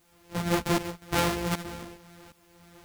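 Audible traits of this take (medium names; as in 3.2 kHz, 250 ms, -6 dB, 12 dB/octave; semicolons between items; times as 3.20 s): a buzz of ramps at a fixed pitch in blocks of 256 samples; tremolo saw up 1.3 Hz, depth 90%; a quantiser's noise floor 12-bit, dither triangular; a shimmering, thickened sound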